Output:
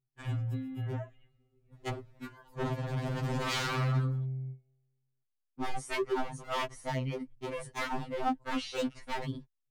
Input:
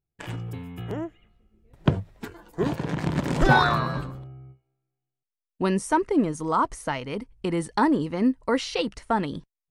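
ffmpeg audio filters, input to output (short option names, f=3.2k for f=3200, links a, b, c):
-af "bass=f=250:g=6,treble=f=4k:g=-4,aeval=exprs='0.0944*(abs(mod(val(0)/0.0944+3,4)-2)-1)':c=same,afftfilt=real='re*2.45*eq(mod(b,6),0)':imag='im*2.45*eq(mod(b,6),0)':win_size=2048:overlap=0.75,volume=-4.5dB"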